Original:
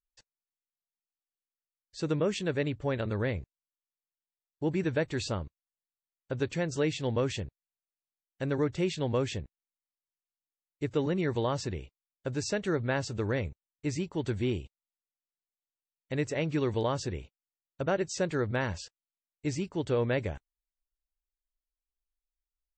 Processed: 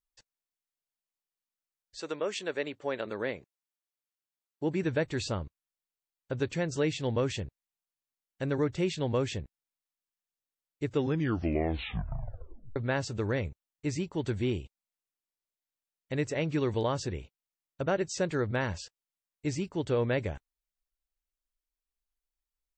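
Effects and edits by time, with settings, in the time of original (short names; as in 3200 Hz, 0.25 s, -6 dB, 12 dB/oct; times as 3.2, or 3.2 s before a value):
1.99–4.83 HPF 540 Hz -> 140 Hz
10.92 tape stop 1.84 s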